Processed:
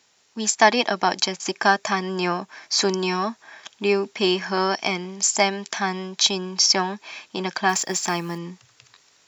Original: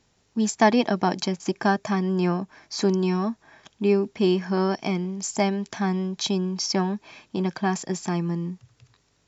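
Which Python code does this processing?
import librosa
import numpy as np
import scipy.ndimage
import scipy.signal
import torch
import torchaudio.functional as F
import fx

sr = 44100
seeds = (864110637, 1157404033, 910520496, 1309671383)

p1 = fx.highpass(x, sr, hz=1300.0, slope=6)
p2 = fx.rider(p1, sr, range_db=4, speed_s=2.0)
p3 = p1 + (p2 * librosa.db_to_amplitude(0.0))
p4 = fx.quant_companded(p3, sr, bits=6, at=(7.69, 8.38))
y = p4 * librosa.db_to_amplitude(4.0)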